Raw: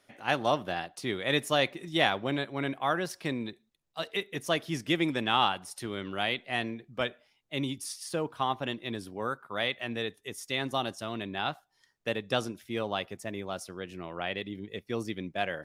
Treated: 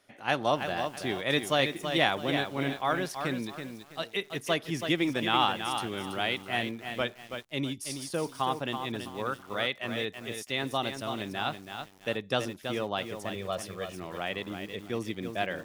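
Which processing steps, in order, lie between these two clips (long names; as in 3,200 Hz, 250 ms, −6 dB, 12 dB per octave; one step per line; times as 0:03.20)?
0:13.35–0:13.92: comb filter 1.7 ms, depth 78%
feedback echo at a low word length 328 ms, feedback 35%, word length 8 bits, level −7 dB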